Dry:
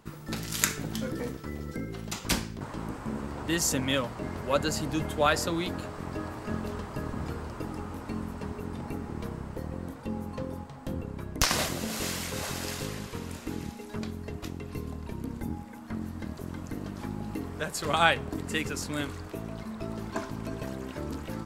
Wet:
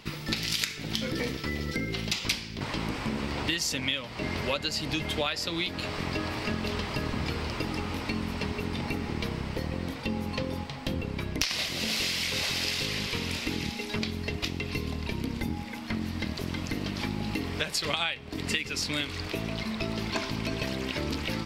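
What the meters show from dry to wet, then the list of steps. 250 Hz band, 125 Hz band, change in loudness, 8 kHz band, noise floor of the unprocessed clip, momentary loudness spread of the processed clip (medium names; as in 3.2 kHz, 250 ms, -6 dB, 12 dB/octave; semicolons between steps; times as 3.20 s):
+1.0 dB, +1.5 dB, +2.0 dB, -2.5 dB, -44 dBFS, 6 LU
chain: high-order bell 3.3 kHz +12.5 dB; compression 12:1, threshold -31 dBFS, peak gain reduction 21 dB; trim +5 dB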